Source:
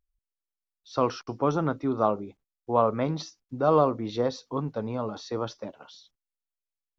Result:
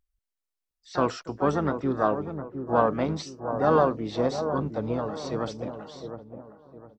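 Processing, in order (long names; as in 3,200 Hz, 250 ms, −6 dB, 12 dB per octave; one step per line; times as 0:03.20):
delay with a low-pass on its return 710 ms, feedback 35%, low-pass 930 Hz, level −8 dB
pitch-shifted copies added −12 semitones −15 dB, +5 semitones −10 dB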